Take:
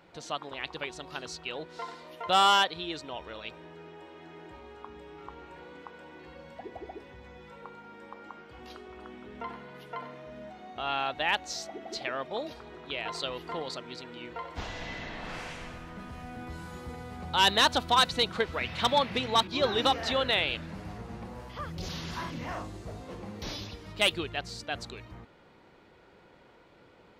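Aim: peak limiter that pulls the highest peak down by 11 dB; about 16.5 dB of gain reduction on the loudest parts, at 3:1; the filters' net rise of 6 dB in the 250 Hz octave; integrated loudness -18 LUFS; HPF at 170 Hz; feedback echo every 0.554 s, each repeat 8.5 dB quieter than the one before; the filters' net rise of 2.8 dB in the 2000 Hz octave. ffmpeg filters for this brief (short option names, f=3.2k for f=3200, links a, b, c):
-af "highpass=170,equalizer=f=250:t=o:g=8.5,equalizer=f=2k:t=o:g=3.5,acompressor=threshold=-40dB:ratio=3,alimiter=level_in=9dB:limit=-24dB:level=0:latency=1,volume=-9dB,aecho=1:1:554|1108|1662|2216:0.376|0.143|0.0543|0.0206,volume=25.5dB"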